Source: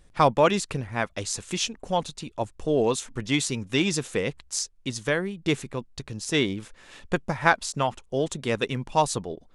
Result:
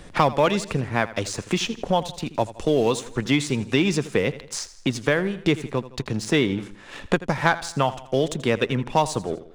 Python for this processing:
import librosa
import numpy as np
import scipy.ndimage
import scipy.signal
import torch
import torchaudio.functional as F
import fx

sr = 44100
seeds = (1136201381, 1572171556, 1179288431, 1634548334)

p1 = fx.high_shelf(x, sr, hz=6000.0, db=-9.0)
p2 = fx.leveller(p1, sr, passes=1)
p3 = p2 + fx.echo_feedback(p2, sr, ms=82, feedback_pct=41, wet_db=-17, dry=0)
y = fx.band_squash(p3, sr, depth_pct=70)